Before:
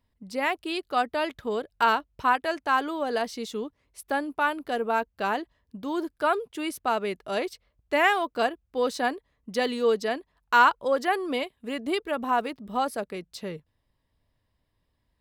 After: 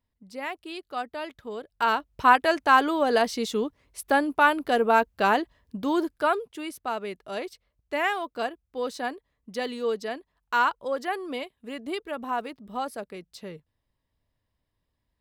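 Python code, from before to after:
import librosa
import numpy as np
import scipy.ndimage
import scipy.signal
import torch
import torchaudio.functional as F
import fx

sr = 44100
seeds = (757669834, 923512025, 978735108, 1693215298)

y = fx.gain(x, sr, db=fx.line((1.55, -7.0), (2.32, 5.5), (5.88, 5.5), (6.68, -4.5)))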